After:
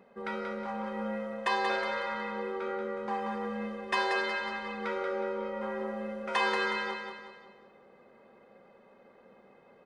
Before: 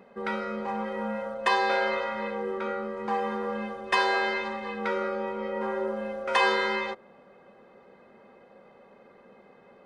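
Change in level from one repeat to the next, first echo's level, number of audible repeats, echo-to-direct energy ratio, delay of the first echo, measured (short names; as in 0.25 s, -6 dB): -7.0 dB, -5.5 dB, 5, -4.5 dB, 0.183 s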